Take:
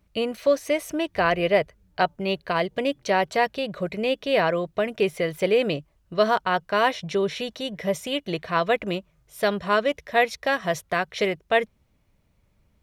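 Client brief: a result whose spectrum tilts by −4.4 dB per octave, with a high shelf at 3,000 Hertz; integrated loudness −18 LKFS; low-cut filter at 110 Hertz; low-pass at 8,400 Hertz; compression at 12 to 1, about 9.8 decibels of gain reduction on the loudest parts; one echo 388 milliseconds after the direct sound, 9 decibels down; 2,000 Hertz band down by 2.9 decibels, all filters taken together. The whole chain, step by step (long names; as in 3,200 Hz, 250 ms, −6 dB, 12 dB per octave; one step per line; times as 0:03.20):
high-pass filter 110 Hz
low-pass filter 8,400 Hz
parametric band 2,000 Hz −5 dB
high-shelf EQ 3,000 Hz +3.5 dB
downward compressor 12 to 1, threshold −25 dBFS
single-tap delay 388 ms −9 dB
level +13 dB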